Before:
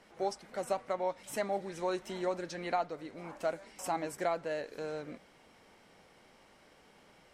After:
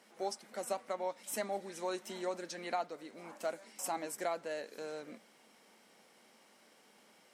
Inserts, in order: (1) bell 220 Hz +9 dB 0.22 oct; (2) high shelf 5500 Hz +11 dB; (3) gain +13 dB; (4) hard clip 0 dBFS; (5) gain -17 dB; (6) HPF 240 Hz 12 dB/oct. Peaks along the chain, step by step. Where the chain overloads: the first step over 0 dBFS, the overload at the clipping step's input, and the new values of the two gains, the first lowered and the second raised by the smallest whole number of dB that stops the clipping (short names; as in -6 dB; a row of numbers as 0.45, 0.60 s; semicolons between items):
-18.5, -18.0, -5.0, -5.0, -22.0, -22.5 dBFS; no overload